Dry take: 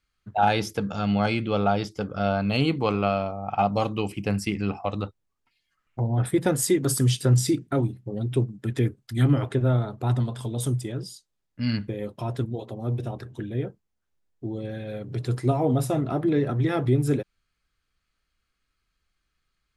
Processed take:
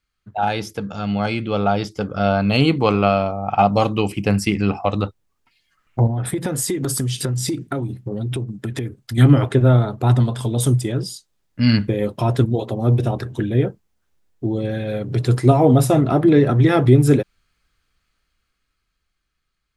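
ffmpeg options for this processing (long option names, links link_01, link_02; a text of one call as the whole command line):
ffmpeg -i in.wav -filter_complex "[0:a]asettb=1/sr,asplit=3[link_01][link_02][link_03];[link_01]atrim=end=6.074[link_04];[link_02]atrim=start=6.07:end=9.18,asetpts=PTS-STARTPTS,afade=type=in:duration=0.004:curve=qsin,afade=type=out:start_time=3.106:duration=0.004:curve=qsin,acompressor=threshold=-29dB:ratio=16:attack=3.2:release=140:knee=1:detection=peak[link_05];[link_03]atrim=start=9.176[link_06];[link_04][link_05]acrossfade=duration=0.004:curve1=hsin:curve2=qsin[link_07];[link_07][link_06]acrossfade=duration=0.004:curve1=qsin:curve2=hsin,dynaudnorm=framelen=170:gausssize=21:maxgain=13dB" out.wav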